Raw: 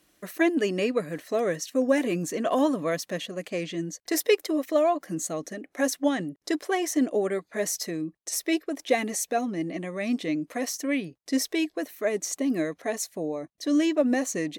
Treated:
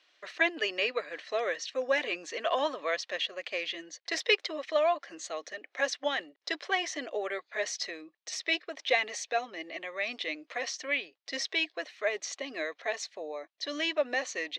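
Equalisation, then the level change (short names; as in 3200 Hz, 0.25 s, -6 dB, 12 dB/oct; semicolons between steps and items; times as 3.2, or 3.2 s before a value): Chebyshev band-pass 480–3800 Hz, order 2; air absorption 150 m; tilt +5 dB/oct; 0.0 dB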